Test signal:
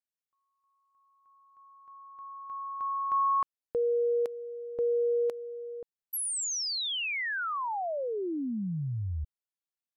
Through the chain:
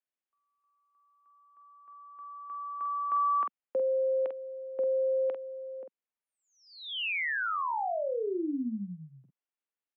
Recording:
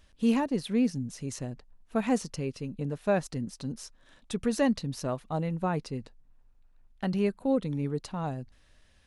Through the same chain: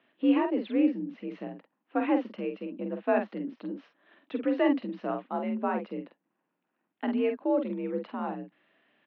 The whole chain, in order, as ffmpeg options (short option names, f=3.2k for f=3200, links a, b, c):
-filter_complex "[0:a]asplit=2[a][b];[b]adelay=47,volume=-6dB[c];[a][c]amix=inputs=2:normalize=0,highpass=f=160:t=q:w=0.5412,highpass=f=160:t=q:w=1.307,lowpass=f=3k:t=q:w=0.5176,lowpass=f=3k:t=q:w=0.7071,lowpass=f=3k:t=q:w=1.932,afreqshift=52"